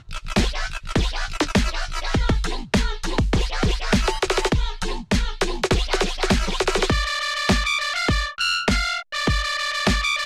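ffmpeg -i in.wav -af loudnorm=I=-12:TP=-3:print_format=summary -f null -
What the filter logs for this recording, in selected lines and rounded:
Input Integrated:    -22.1 LUFS
Input True Peak:      -9.4 dBTP
Input LRA:             2.1 LU
Input Threshold:     -32.1 LUFS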